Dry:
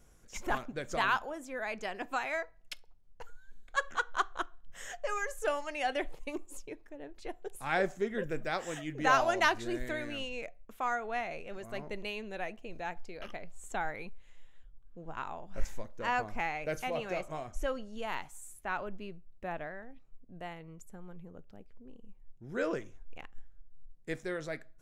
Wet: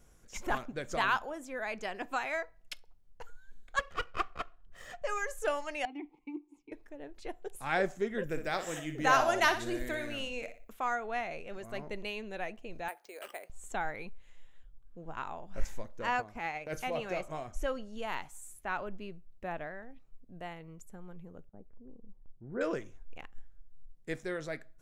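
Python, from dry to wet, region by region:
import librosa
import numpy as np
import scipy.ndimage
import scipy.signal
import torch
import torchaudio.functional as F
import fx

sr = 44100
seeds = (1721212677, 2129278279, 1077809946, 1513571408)

y = fx.chain(x, sr, fx.lower_of_two(delay_ms=1.6),
    fx.high_shelf(hz=4200.0, db=-11.5), at=(3.79, 5.02))
y = fx.chain(y, sr, fx.vowel_filter(vowel='u'),
    fx.low_shelf(hz=360.0, db=6.5),
    fx.band_squash(depth_pct=40), at=(5.85, 6.72))
y = fx.chain(y, sr, fx.high_shelf(hz=11000.0, db=11.5),
    fx.room_flutter(wall_m=10.3, rt60_s=0.36), at=(8.24, 10.73))
y = fx.chain(y, sr, fx.highpass(hz=370.0, slope=24),
    fx.resample_bad(factor=4, down='none', up='hold'), at=(12.88, 13.5))
y = fx.chain(y, sr, fx.highpass(hz=48.0, slope=6),
    fx.transient(attack_db=-11, sustain_db=-7), at=(16.16, 16.73))
y = fx.chain(y, sr, fx.gaussian_blur(sigma=6.1),
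    fx.gate_hold(open_db=-46.0, close_db=-55.0, hold_ms=71.0, range_db=-21, attack_ms=1.4, release_ms=100.0), at=(21.49, 22.61))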